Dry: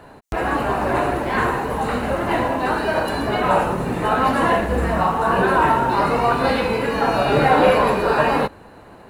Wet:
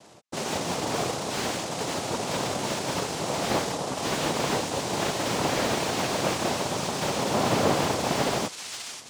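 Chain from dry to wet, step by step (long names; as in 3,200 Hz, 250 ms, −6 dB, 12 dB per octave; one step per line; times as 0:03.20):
cochlear-implant simulation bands 2
delay with a high-pass on its return 534 ms, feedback 45%, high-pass 2,000 Hz, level −7.5 dB
slew-rate limiting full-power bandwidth 330 Hz
level −8 dB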